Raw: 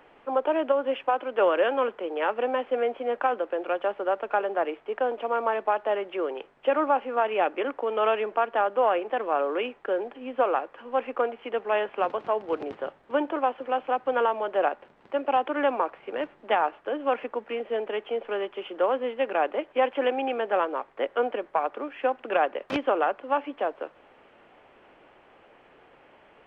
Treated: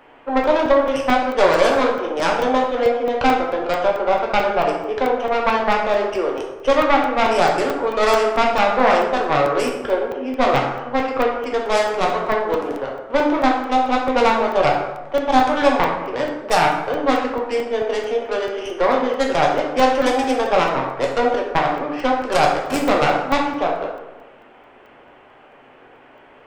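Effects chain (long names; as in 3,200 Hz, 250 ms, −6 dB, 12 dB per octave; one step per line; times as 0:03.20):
stylus tracing distortion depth 0.35 ms
dense smooth reverb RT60 1.1 s, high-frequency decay 0.55×, DRR −1.5 dB
regular buffer underruns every 0.22 s, samples 64, zero, from 0:00.44
level +4.5 dB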